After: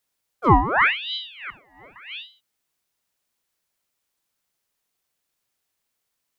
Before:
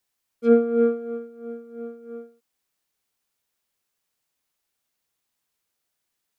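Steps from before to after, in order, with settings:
0:01.50–0:01.96: low shelf with overshoot 720 Hz −13.5 dB, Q 3
ring modulator whose carrier an LFO sweeps 2,000 Hz, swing 75%, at 0.86 Hz
level +4 dB

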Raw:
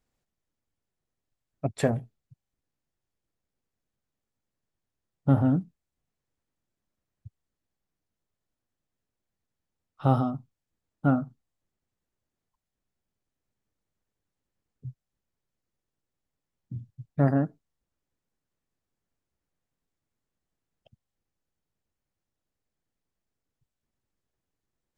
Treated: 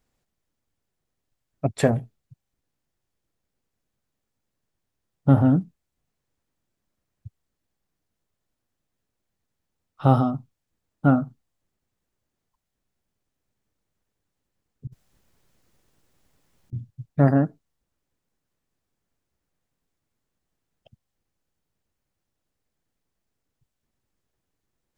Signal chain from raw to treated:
0:14.87–0:16.73: compressor whose output falls as the input rises −57 dBFS, ratio −1
level +5 dB

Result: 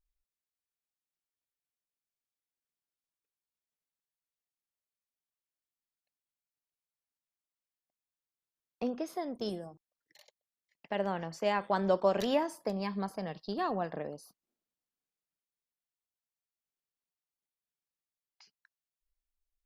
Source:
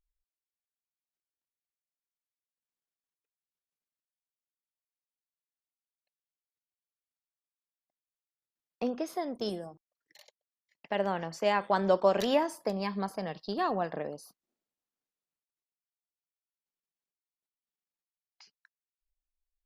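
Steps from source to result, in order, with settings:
low-shelf EQ 230 Hz +4.5 dB
level −3.5 dB

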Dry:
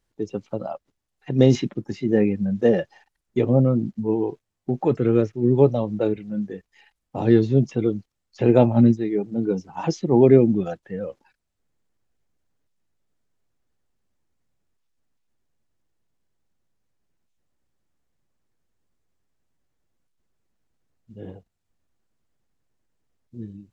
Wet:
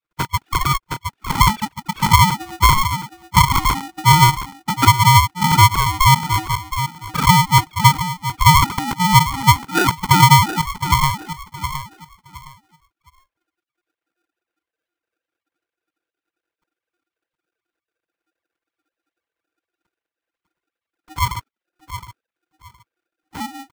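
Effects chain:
three sine waves on the formant tracks
in parallel at −9.5 dB: soft clipping −15 dBFS, distortion −10 dB
on the sum: flanger swept by the level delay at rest 5.8 ms, full sweep at −15.5 dBFS
downward compressor 3 to 1, threshold −32 dBFS, peak gain reduction 18.5 dB
high-pass with resonance 420 Hz, resonance Q 4.9
parametric band 870 Hz +11.5 dB 0.53 octaves
on a send: repeating echo 716 ms, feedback 21%, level −11 dB
on the sum: automatic gain control gain up to 9 dB
ring modulator with a square carrier 540 Hz

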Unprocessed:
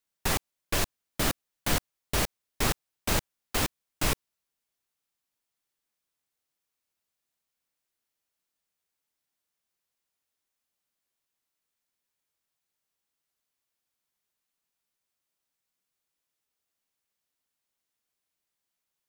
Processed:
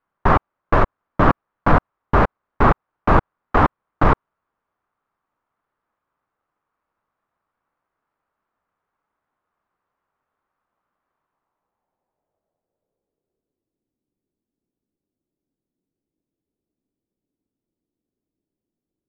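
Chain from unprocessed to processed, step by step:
each half-wave held at its own peak
low-pass filter sweep 1,200 Hz → 310 Hz, 0:11.18–0:13.91
level +7 dB

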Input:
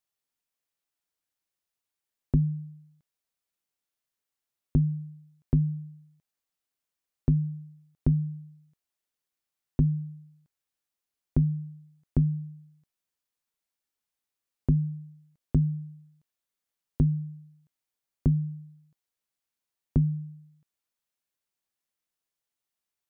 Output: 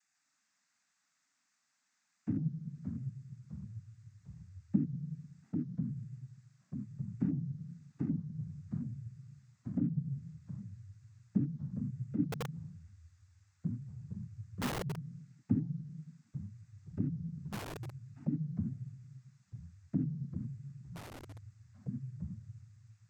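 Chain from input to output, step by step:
spectrum averaged block by block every 100 ms
elliptic band-stop filter 250–870 Hz
downward compressor 6 to 1, threshold −39 dBFS, peak gain reduction 16 dB
phaser with its sweep stopped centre 680 Hz, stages 8
cochlear-implant simulation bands 16
0:12.32–0:14.86: wrap-around overflow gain 51 dB
delay with pitch and tempo change per echo 143 ms, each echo −3 semitones, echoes 3, each echo −6 dB
level +18 dB

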